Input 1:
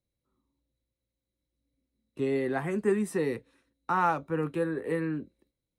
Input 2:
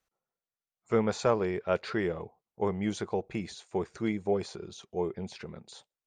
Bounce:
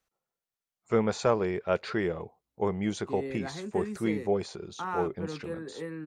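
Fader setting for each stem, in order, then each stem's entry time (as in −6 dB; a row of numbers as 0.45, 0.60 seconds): −8.0, +1.0 decibels; 0.90, 0.00 seconds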